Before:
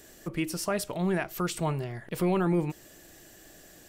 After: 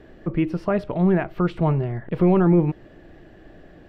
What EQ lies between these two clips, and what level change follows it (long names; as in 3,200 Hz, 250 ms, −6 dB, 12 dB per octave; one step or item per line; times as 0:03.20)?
high-frequency loss of the air 380 metres
spectral tilt −2 dB per octave
low-shelf EQ 140 Hz −4 dB
+7.0 dB